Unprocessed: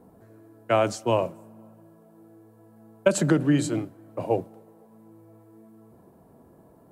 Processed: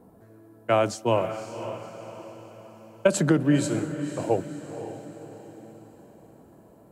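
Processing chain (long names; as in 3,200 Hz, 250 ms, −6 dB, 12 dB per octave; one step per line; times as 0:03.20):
feedback delay with all-pass diffusion 534 ms, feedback 46%, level −10.5 dB
tempo change 1×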